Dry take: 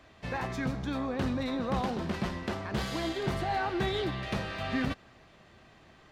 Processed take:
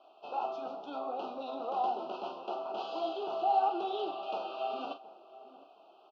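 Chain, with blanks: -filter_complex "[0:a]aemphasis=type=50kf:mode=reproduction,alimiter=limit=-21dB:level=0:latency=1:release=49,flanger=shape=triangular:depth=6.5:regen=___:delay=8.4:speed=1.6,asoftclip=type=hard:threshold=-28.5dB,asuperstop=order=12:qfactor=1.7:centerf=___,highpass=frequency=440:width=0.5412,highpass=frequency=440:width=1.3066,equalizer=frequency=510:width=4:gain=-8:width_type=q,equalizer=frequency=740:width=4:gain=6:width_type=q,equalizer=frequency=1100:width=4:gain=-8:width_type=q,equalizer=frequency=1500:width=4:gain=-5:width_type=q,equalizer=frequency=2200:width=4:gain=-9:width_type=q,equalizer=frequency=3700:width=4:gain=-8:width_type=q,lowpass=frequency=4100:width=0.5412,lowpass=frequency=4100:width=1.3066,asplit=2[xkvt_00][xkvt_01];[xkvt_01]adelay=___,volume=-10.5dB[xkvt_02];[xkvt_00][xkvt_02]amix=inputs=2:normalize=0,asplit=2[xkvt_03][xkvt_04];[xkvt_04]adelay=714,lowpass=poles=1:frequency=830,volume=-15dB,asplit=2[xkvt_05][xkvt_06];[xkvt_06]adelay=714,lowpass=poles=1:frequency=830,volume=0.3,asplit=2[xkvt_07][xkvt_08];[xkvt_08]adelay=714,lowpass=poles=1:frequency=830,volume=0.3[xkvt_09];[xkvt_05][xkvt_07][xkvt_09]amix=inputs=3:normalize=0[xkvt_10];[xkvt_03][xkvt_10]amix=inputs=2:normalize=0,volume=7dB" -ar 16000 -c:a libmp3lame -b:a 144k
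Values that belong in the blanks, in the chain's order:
-47, 1900, 41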